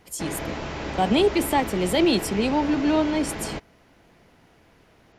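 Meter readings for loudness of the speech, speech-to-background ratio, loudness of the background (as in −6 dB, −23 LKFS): −23.0 LKFS, 9.5 dB, −32.5 LKFS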